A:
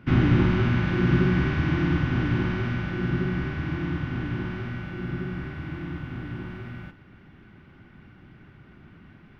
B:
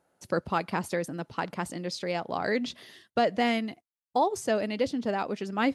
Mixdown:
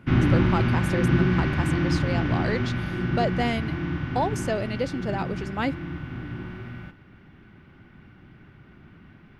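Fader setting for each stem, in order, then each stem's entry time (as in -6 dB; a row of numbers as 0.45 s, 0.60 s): 0.0 dB, -0.5 dB; 0.00 s, 0.00 s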